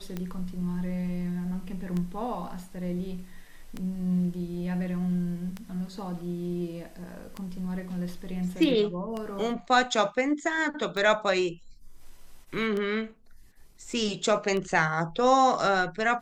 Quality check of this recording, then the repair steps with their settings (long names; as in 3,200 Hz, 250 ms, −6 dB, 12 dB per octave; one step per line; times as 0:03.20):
scratch tick 33 1/3 rpm −20 dBFS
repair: click removal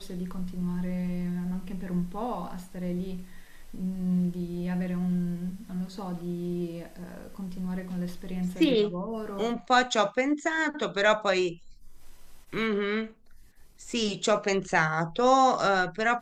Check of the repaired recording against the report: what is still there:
none of them is left